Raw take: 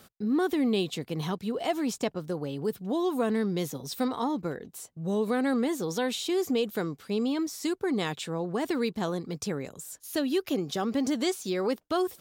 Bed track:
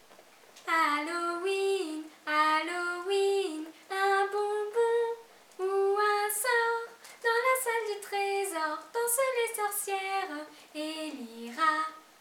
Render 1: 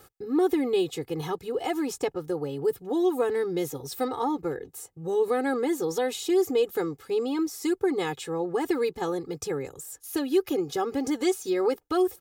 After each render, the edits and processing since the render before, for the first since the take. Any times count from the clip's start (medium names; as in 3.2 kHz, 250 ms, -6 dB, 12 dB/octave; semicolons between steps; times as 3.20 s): peaking EQ 3.7 kHz -6 dB 1.5 oct; comb 2.4 ms, depth 96%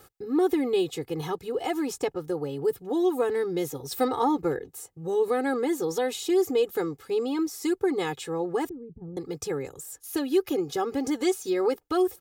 3.91–4.59 s: gain +3.5 dB; 8.69–9.17 s: resonant low-pass 150 Hz, resonance Q 1.5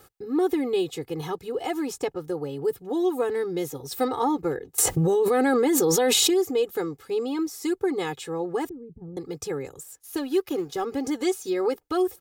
4.78–6.34 s: level flattener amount 100%; 9.83–10.85 s: companding laws mixed up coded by A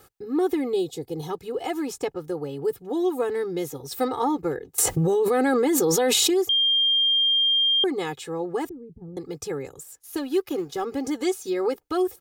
0.73–1.30 s: high-order bell 1.7 kHz -10.5 dB; 6.49–7.84 s: bleep 3.2 kHz -17.5 dBFS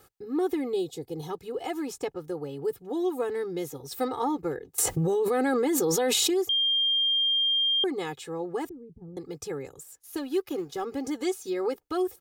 trim -4 dB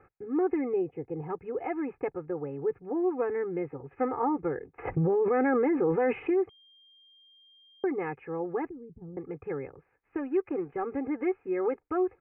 steep low-pass 2.5 kHz 96 dB/octave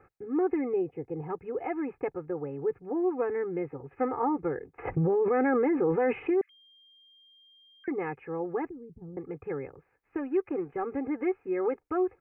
6.41–7.88 s: steep high-pass 1.6 kHz 48 dB/octave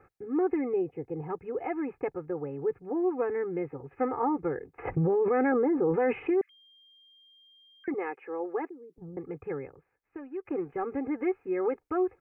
5.52–5.94 s: low-pass 1.2 kHz; 7.94–8.98 s: high-pass 310 Hz 24 dB/octave; 9.49–10.45 s: fade out quadratic, to -10 dB